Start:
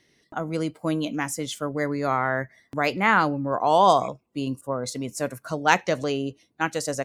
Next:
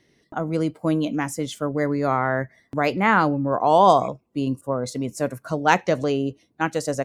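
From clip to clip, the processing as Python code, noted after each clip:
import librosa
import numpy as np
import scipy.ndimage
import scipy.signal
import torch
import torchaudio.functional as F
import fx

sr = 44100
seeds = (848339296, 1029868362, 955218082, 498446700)

y = fx.tilt_shelf(x, sr, db=3.5, hz=1200.0)
y = F.gain(torch.from_numpy(y), 1.0).numpy()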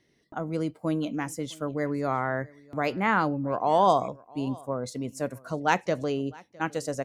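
y = x + 10.0 ** (-24.0 / 20.0) * np.pad(x, (int(659 * sr / 1000.0), 0))[:len(x)]
y = F.gain(torch.from_numpy(y), -6.0).numpy()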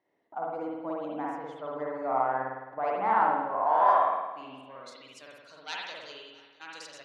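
y = fx.tube_stage(x, sr, drive_db=12.0, bias=0.3)
y = fx.filter_sweep_bandpass(y, sr, from_hz=820.0, to_hz=4000.0, start_s=3.41, end_s=5.3, q=2.4)
y = fx.rev_spring(y, sr, rt60_s=1.1, pass_ms=(53,), chirp_ms=40, drr_db=-4.0)
y = F.gain(torch.from_numpy(y), 1.5).numpy()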